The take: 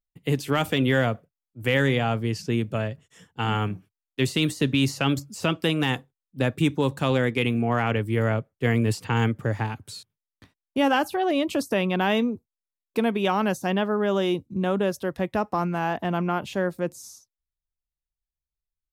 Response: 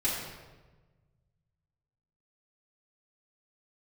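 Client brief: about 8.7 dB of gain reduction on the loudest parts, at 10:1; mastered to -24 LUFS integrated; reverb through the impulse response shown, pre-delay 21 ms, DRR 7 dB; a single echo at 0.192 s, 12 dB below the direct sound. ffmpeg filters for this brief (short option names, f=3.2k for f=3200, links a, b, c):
-filter_complex "[0:a]acompressor=threshold=-26dB:ratio=10,aecho=1:1:192:0.251,asplit=2[a][b];[1:a]atrim=start_sample=2205,adelay=21[c];[b][c]afir=irnorm=-1:irlink=0,volume=-15dB[d];[a][d]amix=inputs=2:normalize=0,volume=7dB"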